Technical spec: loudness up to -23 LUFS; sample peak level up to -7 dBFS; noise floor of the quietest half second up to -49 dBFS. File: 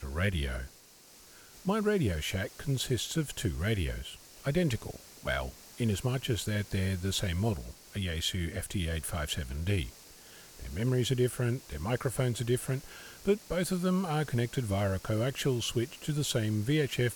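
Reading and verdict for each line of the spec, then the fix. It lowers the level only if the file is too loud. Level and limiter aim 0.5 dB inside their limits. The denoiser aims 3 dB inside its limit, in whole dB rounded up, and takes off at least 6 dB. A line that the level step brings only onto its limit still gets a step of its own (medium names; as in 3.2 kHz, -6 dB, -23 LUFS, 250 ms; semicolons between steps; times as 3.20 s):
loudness -32.0 LUFS: pass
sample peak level -15.5 dBFS: pass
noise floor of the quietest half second -56 dBFS: pass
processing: none needed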